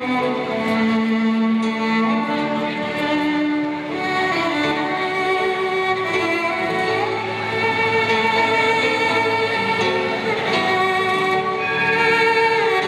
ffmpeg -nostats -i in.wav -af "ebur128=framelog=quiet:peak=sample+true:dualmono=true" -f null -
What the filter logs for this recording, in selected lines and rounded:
Integrated loudness:
  I:         -15.6 LUFS
  Threshold: -25.6 LUFS
Loudness range:
  LRA:         2.6 LU
  Threshold: -35.8 LUFS
  LRA low:   -17.1 LUFS
  LRA high:  -14.5 LUFS
Sample peak:
  Peak:       -5.0 dBFS
True peak:
  Peak:       -4.9 dBFS